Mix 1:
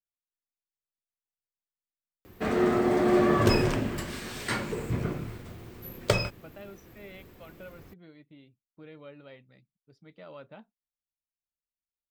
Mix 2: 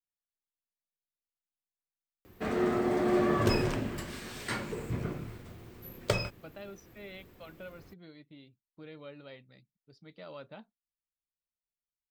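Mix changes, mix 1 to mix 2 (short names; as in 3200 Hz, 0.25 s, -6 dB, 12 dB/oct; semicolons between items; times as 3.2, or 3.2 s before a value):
speech: add bell 4400 Hz +9 dB 0.59 oct; background -4.5 dB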